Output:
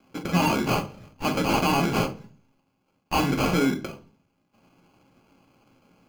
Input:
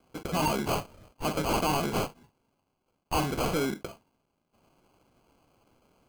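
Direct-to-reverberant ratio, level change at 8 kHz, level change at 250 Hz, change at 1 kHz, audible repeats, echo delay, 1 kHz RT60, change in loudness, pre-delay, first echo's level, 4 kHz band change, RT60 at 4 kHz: 7.0 dB, +1.5 dB, +7.5 dB, +4.5 dB, no echo, no echo, 0.40 s, +5.5 dB, 3 ms, no echo, +4.5 dB, 0.50 s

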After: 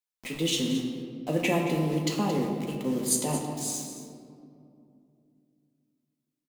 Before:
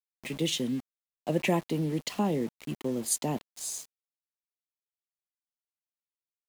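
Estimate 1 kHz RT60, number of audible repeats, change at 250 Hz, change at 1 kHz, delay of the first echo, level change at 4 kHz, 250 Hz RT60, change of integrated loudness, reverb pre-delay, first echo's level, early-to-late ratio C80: 2.2 s, 1, +3.0 dB, +2.5 dB, 223 ms, +3.5 dB, 3.8 s, +2.5 dB, 4 ms, -12.5 dB, 5.0 dB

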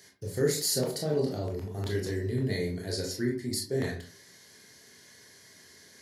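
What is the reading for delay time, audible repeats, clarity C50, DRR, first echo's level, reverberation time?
no echo, no echo, 6.5 dB, -1.5 dB, no echo, 0.40 s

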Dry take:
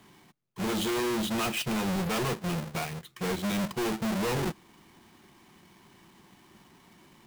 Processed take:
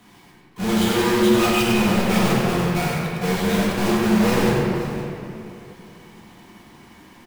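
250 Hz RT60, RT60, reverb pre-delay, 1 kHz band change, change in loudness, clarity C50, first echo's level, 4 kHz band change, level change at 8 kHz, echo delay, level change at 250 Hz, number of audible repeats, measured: 3.1 s, 2.7 s, 4 ms, +10.5 dB, +10.5 dB, -3.0 dB, -5.0 dB, +8.5 dB, +7.5 dB, 97 ms, +12.0 dB, 2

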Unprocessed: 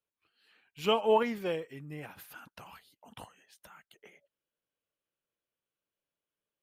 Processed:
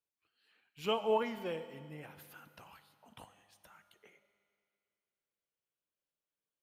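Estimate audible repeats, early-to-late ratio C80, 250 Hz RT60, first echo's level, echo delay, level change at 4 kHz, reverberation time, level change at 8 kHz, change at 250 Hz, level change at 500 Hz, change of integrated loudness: no echo, 13.0 dB, 2.3 s, no echo, no echo, -5.5 dB, 2.3 s, -5.5 dB, -6.0 dB, -5.5 dB, -5.5 dB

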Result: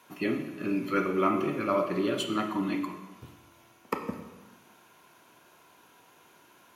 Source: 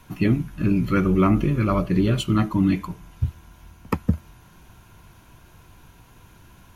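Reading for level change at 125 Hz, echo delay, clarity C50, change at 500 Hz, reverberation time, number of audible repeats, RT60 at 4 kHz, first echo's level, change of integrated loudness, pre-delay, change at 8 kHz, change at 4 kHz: -19.5 dB, no echo, 7.0 dB, -2.5 dB, 1.1 s, no echo, 0.95 s, no echo, -7.5 dB, 24 ms, -4.0 dB, -3.0 dB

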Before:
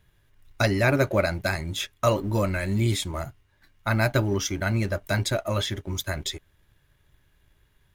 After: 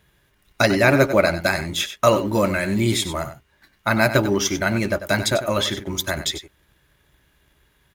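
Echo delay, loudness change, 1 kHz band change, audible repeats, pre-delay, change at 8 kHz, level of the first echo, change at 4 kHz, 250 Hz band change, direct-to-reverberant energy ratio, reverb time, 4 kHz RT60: 95 ms, +5.5 dB, +7.0 dB, 1, no reverb, +7.0 dB, -11.5 dB, +7.0 dB, +6.0 dB, no reverb, no reverb, no reverb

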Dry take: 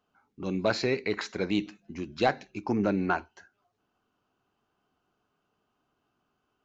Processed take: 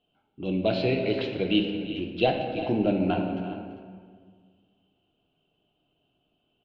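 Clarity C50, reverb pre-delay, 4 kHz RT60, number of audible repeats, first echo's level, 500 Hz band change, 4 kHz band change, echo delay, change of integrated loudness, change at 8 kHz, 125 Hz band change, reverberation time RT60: 4.0 dB, 3 ms, 1.1 s, 2, -14.0 dB, +4.0 dB, +5.0 dB, 339 ms, +2.5 dB, no reading, +5.0 dB, 1.8 s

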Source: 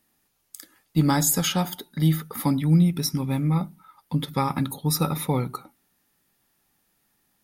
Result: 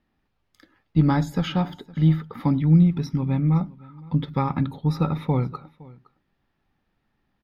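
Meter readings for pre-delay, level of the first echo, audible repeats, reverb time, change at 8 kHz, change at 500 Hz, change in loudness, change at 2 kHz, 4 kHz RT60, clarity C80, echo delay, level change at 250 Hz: no reverb, -22.5 dB, 1, no reverb, under -20 dB, -0.5 dB, +1.0 dB, -3.0 dB, no reverb, no reverb, 513 ms, +2.0 dB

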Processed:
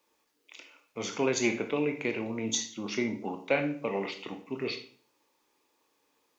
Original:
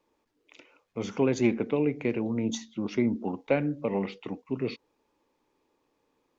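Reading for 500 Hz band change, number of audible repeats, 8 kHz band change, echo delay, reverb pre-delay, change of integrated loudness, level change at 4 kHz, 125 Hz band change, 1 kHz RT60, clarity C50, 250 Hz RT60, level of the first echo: -2.5 dB, no echo, no reading, no echo, 19 ms, -2.5 dB, +7.0 dB, -7.5 dB, 0.45 s, 10.5 dB, 0.60 s, no echo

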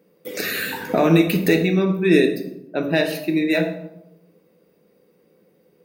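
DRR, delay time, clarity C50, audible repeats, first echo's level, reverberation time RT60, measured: 3.5 dB, no echo, 8.0 dB, no echo, no echo, 0.90 s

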